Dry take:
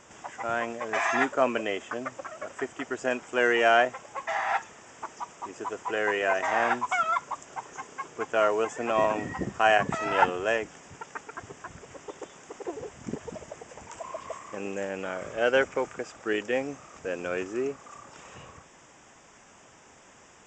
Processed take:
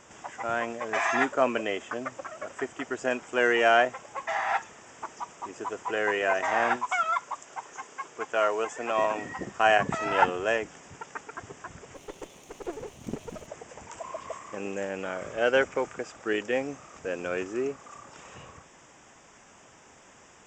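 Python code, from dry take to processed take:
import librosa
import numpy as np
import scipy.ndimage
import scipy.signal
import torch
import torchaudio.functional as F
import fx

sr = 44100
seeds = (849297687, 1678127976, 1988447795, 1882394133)

y = fx.low_shelf(x, sr, hz=290.0, db=-10.0, at=(6.76, 9.6))
y = fx.lower_of_two(y, sr, delay_ms=0.32, at=(11.94, 13.46), fade=0.02)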